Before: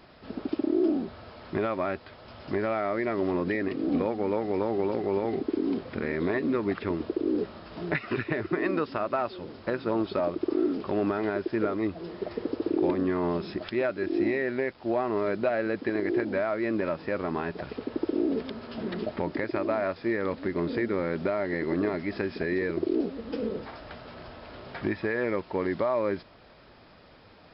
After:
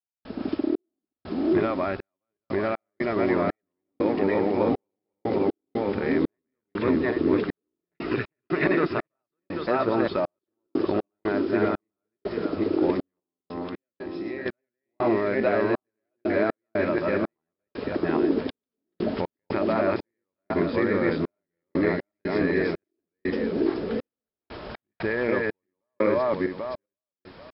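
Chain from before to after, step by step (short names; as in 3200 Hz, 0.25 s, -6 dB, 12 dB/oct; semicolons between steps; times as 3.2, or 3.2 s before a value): regenerating reverse delay 0.395 s, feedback 40%, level 0 dB; 13.2–14.46 resonator 260 Hz, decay 1.1 s, mix 70%; step gate ".xx..xxx..x" 60 bpm -60 dB; gain +2 dB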